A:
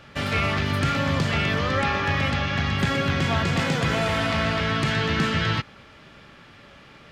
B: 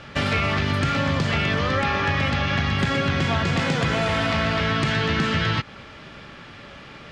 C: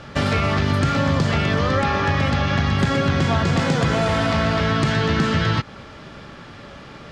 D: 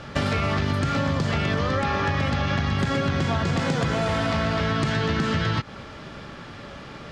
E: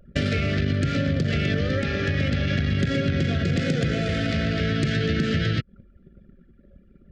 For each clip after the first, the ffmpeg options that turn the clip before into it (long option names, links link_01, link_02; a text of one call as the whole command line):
ffmpeg -i in.wav -af "lowpass=7800,acompressor=threshold=-26dB:ratio=4,volume=6.5dB" out.wav
ffmpeg -i in.wav -af "equalizer=frequency=2500:width_type=o:width=1.3:gain=-6.5,volume=4dB" out.wav
ffmpeg -i in.wav -af "acompressor=threshold=-20dB:ratio=6" out.wav
ffmpeg -i in.wav -af "anlmdn=63.1,asuperstop=centerf=960:order=4:qfactor=0.92,volume=1.5dB" out.wav